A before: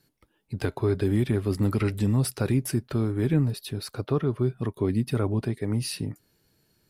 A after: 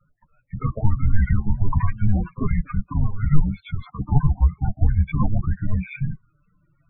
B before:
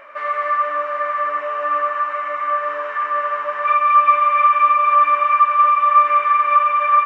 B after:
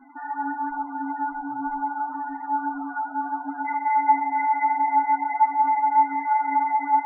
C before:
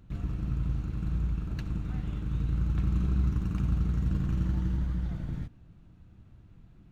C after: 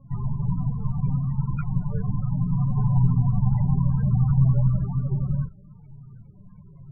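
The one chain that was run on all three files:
single-sideband voice off tune −310 Hz 160–3,100 Hz
multi-voice chorus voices 6, 0.3 Hz, delay 11 ms, depth 4.3 ms
spectral peaks only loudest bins 16
loudness normalisation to −24 LKFS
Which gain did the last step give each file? +12.0, −5.5, +18.0 decibels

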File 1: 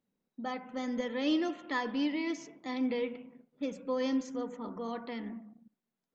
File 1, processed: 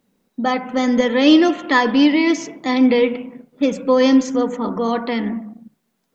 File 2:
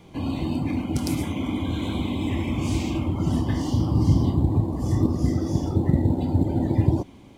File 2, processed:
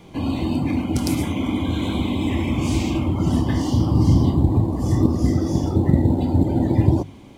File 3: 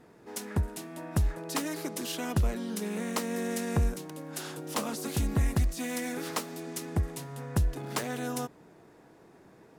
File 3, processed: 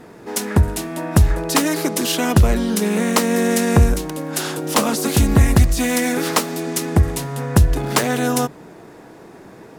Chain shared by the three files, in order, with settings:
mains-hum notches 50/100/150 Hz
normalise the peak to −2 dBFS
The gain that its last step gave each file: +18.0, +4.5, +15.0 decibels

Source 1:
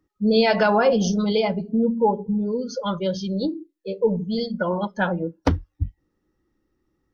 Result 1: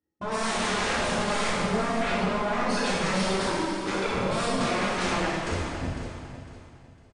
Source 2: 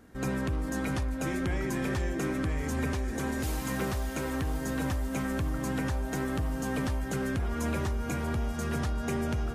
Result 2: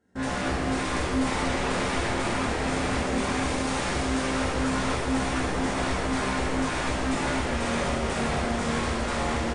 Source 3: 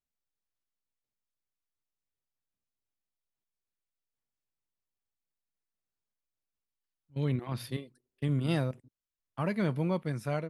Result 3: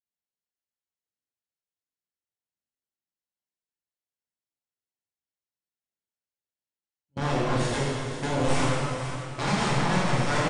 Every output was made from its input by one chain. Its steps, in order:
stylus tracing distortion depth 0.35 ms
noise gate with hold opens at −32 dBFS
brickwall limiter −17 dBFS
downward compressor 6 to 1, threshold −28 dBFS
notch comb filter 1,200 Hz
wave folding −36 dBFS
linear-phase brick-wall low-pass 9,900 Hz
on a send: repeating echo 504 ms, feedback 31%, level −12 dB
on the sum: dense smooth reverb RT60 2.1 s, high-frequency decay 0.95×, DRR −7.5 dB
loudness normalisation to −27 LKFS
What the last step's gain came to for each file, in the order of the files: +6.0, +5.0, +9.5 decibels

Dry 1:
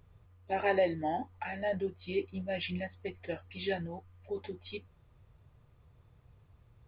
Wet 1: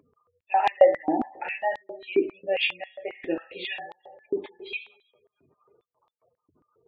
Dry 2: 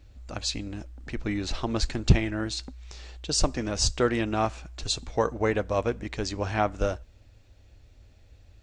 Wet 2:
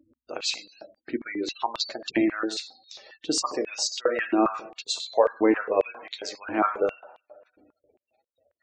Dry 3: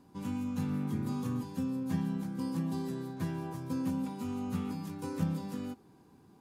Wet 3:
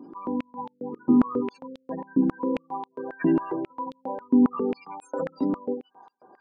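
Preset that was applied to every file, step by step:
coupled-rooms reverb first 0.63 s, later 2.3 s, DRR 5.5 dB
gate on every frequency bin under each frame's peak −25 dB strong
high-pass on a step sequencer 7.4 Hz 290–3,600 Hz
loudness normalisation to −27 LKFS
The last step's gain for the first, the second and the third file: +3.5, −1.5, +10.0 decibels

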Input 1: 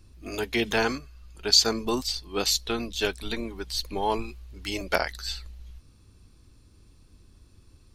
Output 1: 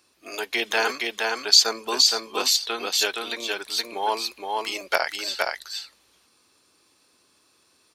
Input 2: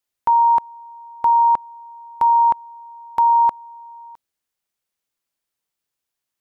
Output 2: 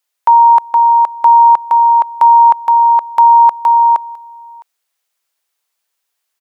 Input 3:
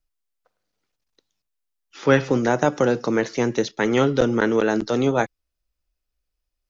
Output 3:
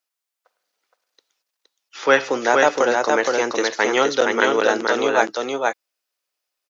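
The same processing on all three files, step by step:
high-pass filter 570 Hz 12 dB per octave
single-tap delay 468 ms −3 dB
normalise the peak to −2 dBFS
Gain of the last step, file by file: +3.5, +8.5, +5.5 decibels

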